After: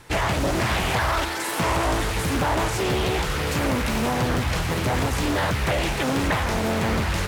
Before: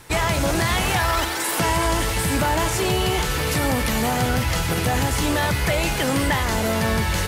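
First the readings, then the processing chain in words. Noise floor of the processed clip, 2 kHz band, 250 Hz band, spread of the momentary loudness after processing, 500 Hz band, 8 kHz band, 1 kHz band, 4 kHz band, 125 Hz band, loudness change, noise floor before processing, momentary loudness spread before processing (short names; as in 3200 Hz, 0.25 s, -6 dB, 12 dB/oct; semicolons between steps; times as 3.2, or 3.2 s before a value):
-28 dBFS, -2.5 dB, -1.0 dB, 2 LU, -1.5 dB, -6.0 dB, -2.0 dB, -3.5 dB, -2.0 dB, -2.5 dB, -24 dBFS, 2 LU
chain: high shelf 5300 Hz -5 dB; Doppler distortion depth 0.74 ms; gain -1.5 dB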